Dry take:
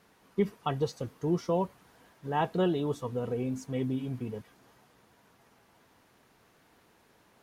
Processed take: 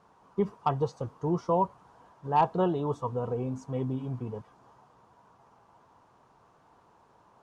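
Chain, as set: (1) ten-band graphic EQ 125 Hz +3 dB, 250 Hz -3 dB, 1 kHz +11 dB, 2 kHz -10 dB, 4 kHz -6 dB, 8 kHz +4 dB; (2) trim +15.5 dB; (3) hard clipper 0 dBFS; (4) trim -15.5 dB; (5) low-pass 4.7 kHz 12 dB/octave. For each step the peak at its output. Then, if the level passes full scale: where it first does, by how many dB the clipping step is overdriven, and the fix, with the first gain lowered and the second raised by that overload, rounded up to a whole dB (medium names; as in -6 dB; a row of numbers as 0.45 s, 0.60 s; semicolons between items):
-12.0 dBFS, +3.5 dBFS, 0.0 dBFS, -15.5 dBFS, -15.5 dBFS; step 2, 3.5 dB; step 2 +11.5 dB, step 4 -11.5 dB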